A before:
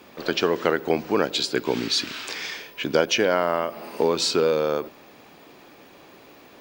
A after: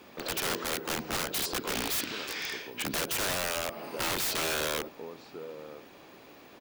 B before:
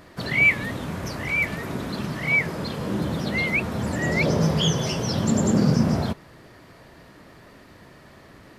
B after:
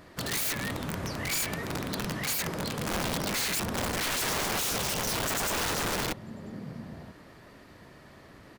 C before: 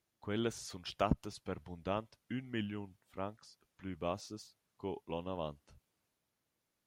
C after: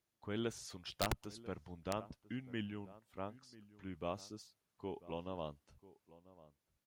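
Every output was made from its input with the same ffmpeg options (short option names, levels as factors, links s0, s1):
-filter_complex "[0:a]asplit=2[s0][s1];[s1]adelay=991.3,volume=0.126,highshelf=f=4000:g=-22.3[s2];[s0][s2]amix=inputs=2:normalize=0,aeval=exprs='(mod(11.9*val(0)+1,2)-1)/11.9':c=same,volume=0.668"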